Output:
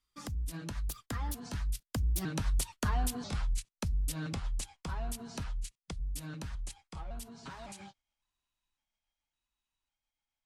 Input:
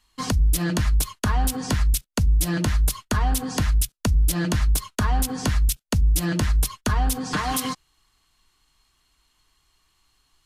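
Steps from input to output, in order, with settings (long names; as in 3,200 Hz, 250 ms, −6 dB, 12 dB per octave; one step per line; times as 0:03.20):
pitch shifter gated in a rhythm −3 semitones, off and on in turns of 501 ms
source passing by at 0:02.81, 38 m/s, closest 22 metres
speech leveller within 3 dB 2 s
level −6.5 dB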